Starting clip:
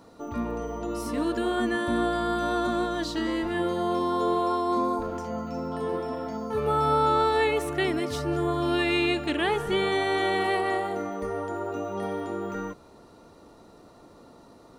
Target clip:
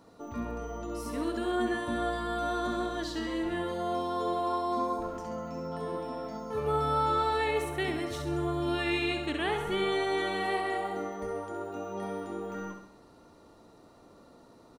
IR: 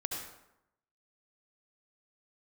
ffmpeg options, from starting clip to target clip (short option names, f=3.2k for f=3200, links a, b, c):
-filter_complex "[0:a]asettb=1/sr,asplit=3[a][b][c];[a]atrim=end=7.624[d];[b]atrim=start=7.62:end=9.83,asetpts=PTS-STARTPTS,afade=t=in:d=0.004:c=qsin,afade=t=out:st=2.206:d=0.004:c=qsin,bandreject=f=4.9k:w=9.2[e];[c]atrim=start=9.826[f];[d][e]acrossfade=d=0.004:c1=hsin:c2=qsin[g];[g][f]acrossfade=d=0.004:c1=qsin:c2=hsin,aecho=1:1:67|134|201|268|335|402:0.447|0.228|0.116|0.0593|0.0302|0.0154,volume=-5.5dB"